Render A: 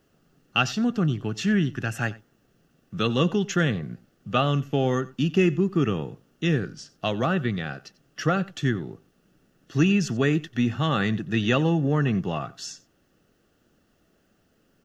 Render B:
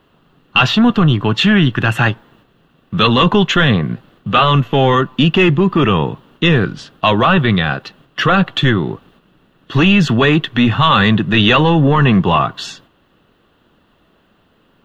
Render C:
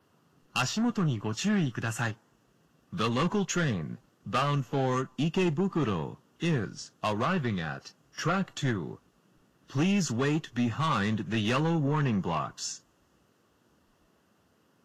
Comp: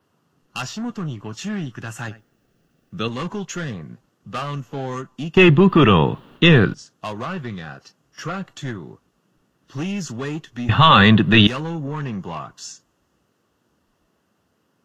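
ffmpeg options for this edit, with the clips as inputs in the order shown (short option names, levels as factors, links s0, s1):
-filter_complex "[1:a]asplit=2[s0][s1];[2:a]asplit=4[s2][s3][s4][s5];[s2]atrim=end=2.082[s6];[0:a]atrim=start=2.078:end=3.082[s7];[s3]atrim=start=3.078:end=5.372[s8];[s0]atrim=start=5.368:end=6.742[s9];[s4]atrim=start=6.738:end=10.692[s10];[s1]atrim=start=10.688:end=11.472[s11];[s5]atrim=start=11.468[s12];[s6][s7]acrossfade=d=0.004:c1=hsin:c2=hsin[s13];[s13][s8]acrossfade=d=0.004:c1=hsin:c2=hsin[s14];[s14][s9]acrossfade=d=0.004:c1=hsin:c2=hsin[s15];[s15][s10]acrossfade=d=0.004:c1=hsin:c2=hsin[s16];[s16][s11]acrossfade=d=0.004:c1=hsin:c2=hsin[s17];[s17][s12]acrossfade=d=0.004:c1=hsin:c2=hsin"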